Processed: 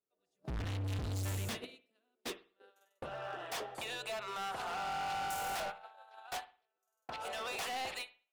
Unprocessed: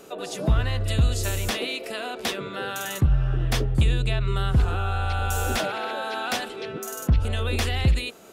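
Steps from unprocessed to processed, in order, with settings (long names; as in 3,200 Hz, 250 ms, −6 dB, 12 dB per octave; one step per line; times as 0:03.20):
noise gate −25 dBFS, range −46 dB
high-pass filter sweep 62 Hz → 760 Hz, 0:00.58–0:03.40
gain into a clipping stage and back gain 32 dB
convolution reverb, pre-delay 52 ms, DRR 14 dB
level −5 dB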